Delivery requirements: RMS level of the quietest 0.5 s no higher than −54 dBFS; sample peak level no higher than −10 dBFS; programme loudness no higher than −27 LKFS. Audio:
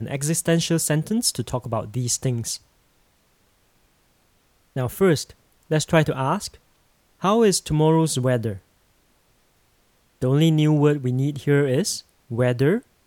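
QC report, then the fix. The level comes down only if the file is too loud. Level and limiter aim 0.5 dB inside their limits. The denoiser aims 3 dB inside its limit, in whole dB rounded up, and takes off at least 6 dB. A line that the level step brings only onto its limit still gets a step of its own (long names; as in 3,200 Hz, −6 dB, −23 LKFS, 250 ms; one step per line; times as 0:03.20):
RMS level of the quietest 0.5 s −62 dBFS: in spec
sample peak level −3.0 dBFS: out of spec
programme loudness −21.5 LKFS: out of spec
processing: level −6 dB
brickwall limiter −10.5 dBFS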